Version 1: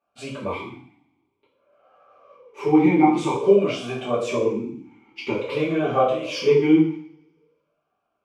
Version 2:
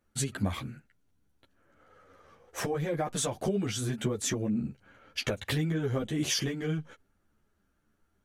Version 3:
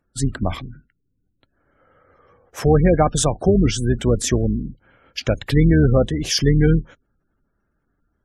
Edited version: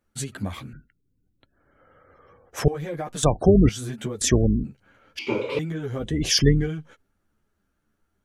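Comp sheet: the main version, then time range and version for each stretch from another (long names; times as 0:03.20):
2
0:00.73–0:02.68: punch in from 3
0:03.23–0:03.69: punch in from 3
0:04.21–0:04.64: punch in from 3
0:05.19–0:05.59: punch in from 1
0:06.10–0:06.58: punch in from 3, crossfade 0.24 s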